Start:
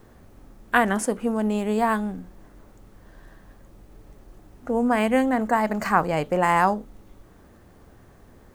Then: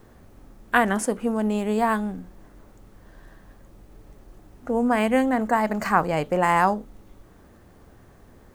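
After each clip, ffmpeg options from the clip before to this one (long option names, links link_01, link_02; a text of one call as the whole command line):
ffmpeg -i in.wav -af anull out.wav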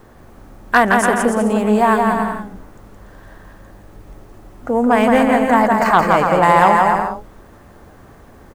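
ffmpeg -i in.wav -af "aecho=1:1:170|289|372.3|430.6|471.4:0.631|0.398|0.251|0.158|0.1,aeval=exprs='0.631*sin(PI/2*1.58*val(0)/0.631)':channel_layout=same,equalizer=frequency=1000:width_type=o:width=2.1:gain=4.5,volume=-3dB" out.wav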